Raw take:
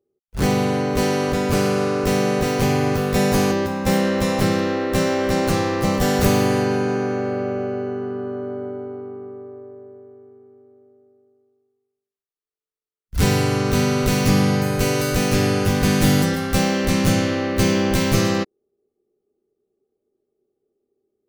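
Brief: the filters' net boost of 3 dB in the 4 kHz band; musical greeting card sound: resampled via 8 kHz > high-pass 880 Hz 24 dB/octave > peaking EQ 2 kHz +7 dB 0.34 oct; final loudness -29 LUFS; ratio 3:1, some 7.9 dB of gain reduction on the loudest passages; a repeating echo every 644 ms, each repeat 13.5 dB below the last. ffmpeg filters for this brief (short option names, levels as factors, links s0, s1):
-af "equalizer=f=4000:t=o:g=3.5,acompressor=threshold=0.0708:ratio=3,aecho=1:1:644|1288:0.211|0.0444,aresample=8000,aresample=44100,highpass=f=880:w=0.5412,highpass=f=880:w=1.3066,equalizer=f=2000:t=o:w=0.34:g=7,volume=1.33"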